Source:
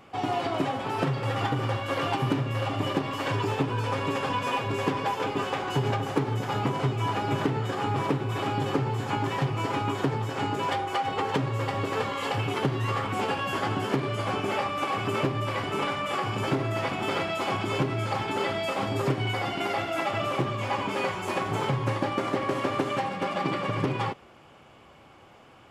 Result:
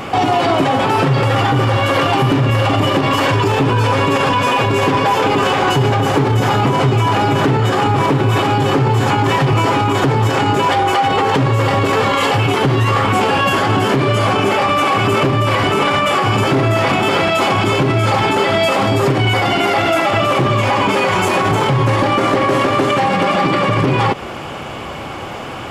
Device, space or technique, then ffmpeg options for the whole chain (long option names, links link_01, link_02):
loud club master: -af "acompressor=threshold=-35dB:ratio=1.5,asoftclip=type=hard:threshold=-21.5dB,alimiter=level_in=31.5dB:limit=-1dB:release=50:level=0:latency=1,volume=-5.5dB"